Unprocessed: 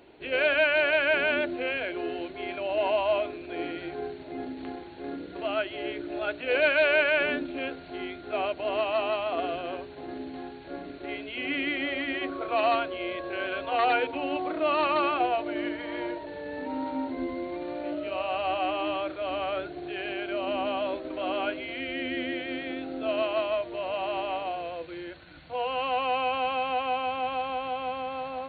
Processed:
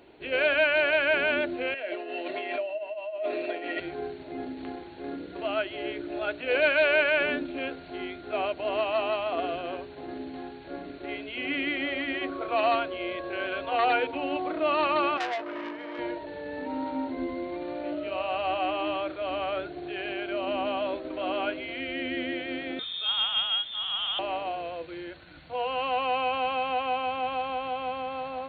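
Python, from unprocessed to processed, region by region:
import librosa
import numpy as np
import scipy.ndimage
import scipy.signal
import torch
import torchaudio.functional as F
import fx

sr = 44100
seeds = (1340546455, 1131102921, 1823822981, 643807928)

y = fx.chain(x, sr, fx.highpass(hz=310.0, slope=12),
    fx.over_compress(threshold_db=-39.0, ratio=-1.0),
    fx.small_body(hz=(620.0, 1900.0, 2700.0), ring_ms=85, db=16), at=(1.74, 3.8))
y = fx.chain(y, sr, fx.highpass(hz=220.0, slope=12),
    fx.high_shelf(hz=2700.0, db=-7.5),
    fx.transformer_sat(knee_hz=2600.0), at=(15.17, 15.99))
y = fx.chain(y, sr, fx.highpass(hz=140.0, slope=12),
    fx.freq_invert(carrier_hz=3900), at=(22.79, 24.19))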